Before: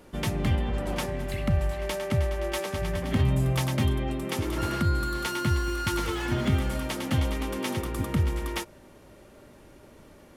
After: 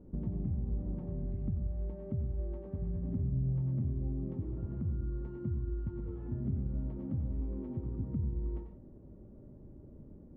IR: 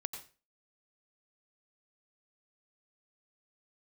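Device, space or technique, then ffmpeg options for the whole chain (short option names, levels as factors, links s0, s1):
television next door: -filter_complex "[0:a]acompressor=threshold=0.0178:ratio=5,lowpass=250[s0];[1:a]atrim=start_sample=2205[s1];[s0][s1]afir=irnorm=-1:irlink=0,volume=1.68"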